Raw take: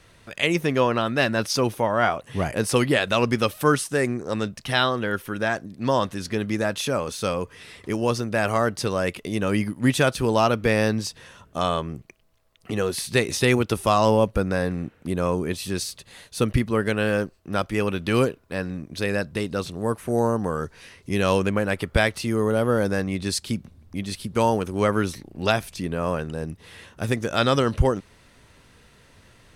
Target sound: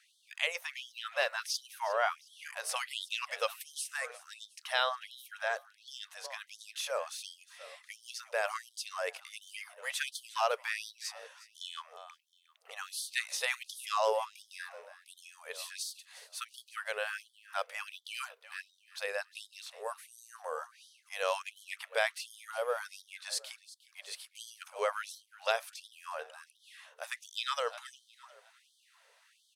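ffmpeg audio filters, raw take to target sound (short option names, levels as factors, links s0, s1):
-filter_complex "[0:a]asplit=4[s0][s1][s2][s3];[s1]adelay=358,afreqshift=32,volume=0.133[s4];[s2]adelay=716,afreqshift=64,volume=0.0479[s5];[s3]adelay=1074,afreqshift=96,volume=0.0174[s6];[s0][s4][s5][s6]amix=inputs=4:normalize=0,afftfilt=real='re*gte(b*sr/1024,420*pow(3100/420,0.5+0.5*sin(2*PI*1.4*pts/sr)))':imag='im*gte(b*sr/1024,420*pow(3100/420,0.5+0.5*sin(2*PI*1.4*pts/sr)))':win_size=1024:overlap=0.75,volume=0.376"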